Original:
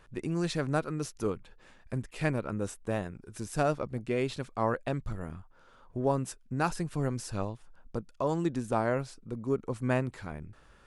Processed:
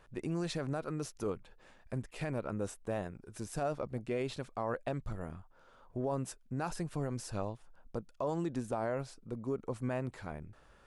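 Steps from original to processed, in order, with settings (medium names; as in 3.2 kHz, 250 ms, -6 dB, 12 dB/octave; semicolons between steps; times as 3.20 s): peaking EQ 660 Hz +4.5 dB 1.1 oct; peak limiter -21.5 dBFS, peak gain reduction 9.5 dB; trim -4 dB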